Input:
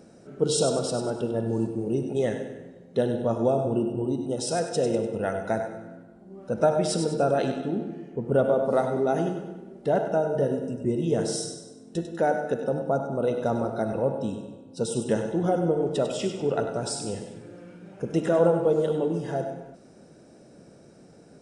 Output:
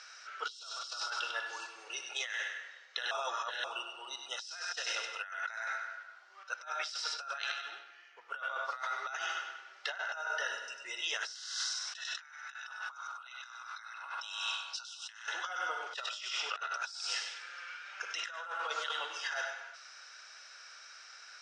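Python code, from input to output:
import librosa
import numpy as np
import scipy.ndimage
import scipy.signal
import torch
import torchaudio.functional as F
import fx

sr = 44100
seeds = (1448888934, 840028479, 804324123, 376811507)

y = fx.upward_expand(x, sr, threshold_db=-35.0, expansion=1.5, at=(6.43, 9.15))
y = fx.spec_clip(y, sr, under_db=26, at=(11.34, 15.25), fade=0.02)
y = fx.edit(y, sr, fx.reverse_span(start_s=3.11, length_s=0.53), tone=tone)
y = scipy.signal.sosfilt(scipy.signal.ellip(3, 1.0, 70, [1300.0, 5800.0], 'bandpass', fs=sr, output='sos'), y)
y = fx.over_compress(y, sr, threshold_db=-49.0, ratio=-1.0)
y = F.gain(torch.from_numpy(y), 7.5).numpy()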